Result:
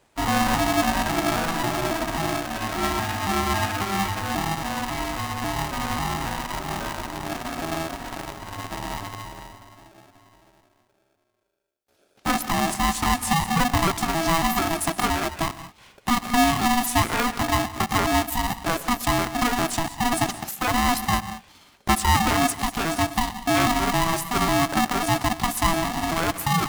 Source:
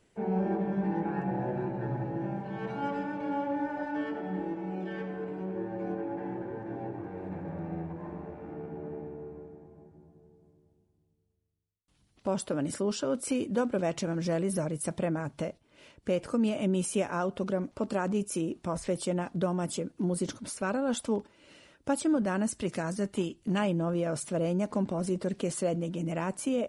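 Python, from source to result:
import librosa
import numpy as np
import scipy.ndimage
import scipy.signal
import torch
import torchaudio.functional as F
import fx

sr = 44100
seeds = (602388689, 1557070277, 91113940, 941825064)

p1 = fx.pitch_trill(x, sr, semitones=5.0, every_ms=272)
p2 = fx.quant_dither(p1, sr, seeds[0], bits=6, dither='none')
p3 = p1 + (p2 * librosa.db_to_amplitude(-6.0))
p4 = fx.rev_gated(p3, sr, seeds[1], gate_ms=220, shape='rising', drr_db=11.5)
p5 = p4 * np.sign(np.sin(2.0 * np.pi * 490.0 * np.arange(len(p4)) / sr))
y = p5 * librosa.db_to_amplitude(4.5)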